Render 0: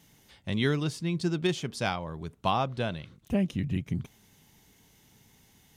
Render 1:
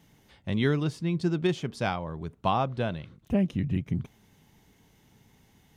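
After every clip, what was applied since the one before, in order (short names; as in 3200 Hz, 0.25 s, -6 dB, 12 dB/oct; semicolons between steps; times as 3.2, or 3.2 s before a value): bell 11000 Hz -9 dB 2.9 oct; gain +2 dB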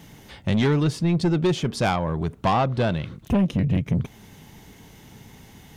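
in parallel at +0.5 dB: compressor, threshold -36 dBFS, peak gain reduction 15.5 dB; on the sum: soft clip -22.5 dBFS, distortion -11 dB; gain +7.5 dB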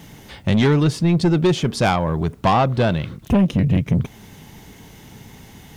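bit-crush 11-bit; gain +4.5 dB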